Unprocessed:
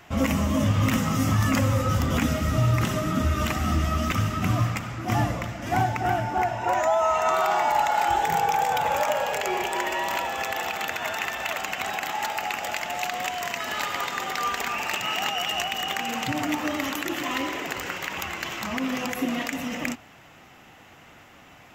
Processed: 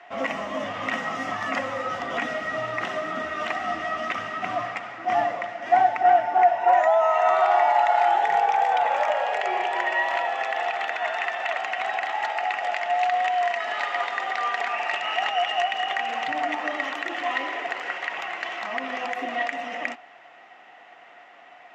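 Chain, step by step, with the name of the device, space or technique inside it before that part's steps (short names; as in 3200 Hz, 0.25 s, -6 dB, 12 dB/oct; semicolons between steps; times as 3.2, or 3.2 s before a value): tin-can telephone (BPF 490–3200 Hz; small resonant body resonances 710/1900 Hz, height 12 dB, ringing for 50 ms)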